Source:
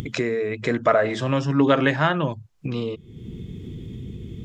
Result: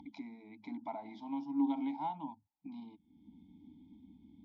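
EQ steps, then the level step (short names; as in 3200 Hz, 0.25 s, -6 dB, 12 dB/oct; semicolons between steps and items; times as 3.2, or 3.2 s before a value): vowel filter u; fixed phaser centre 480 Hz, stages 6; fixed phaser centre 1800 Hz, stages 8; +1.5 dB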